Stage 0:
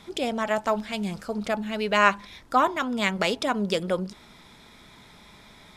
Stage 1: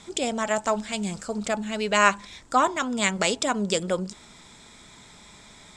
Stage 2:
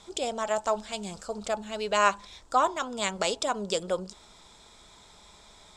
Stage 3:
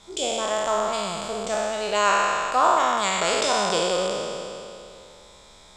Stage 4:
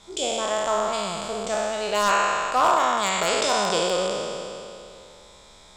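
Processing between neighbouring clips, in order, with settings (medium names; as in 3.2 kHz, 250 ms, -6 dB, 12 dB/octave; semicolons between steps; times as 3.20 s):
resonant low-pass 7.7 kHz, resonance Q 5.7
graphic EQ 125/250/2000/8000 Hz -9/-9/-9/-6 dB
spectral sustain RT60 2.68 s
wavefolder -11 dBFS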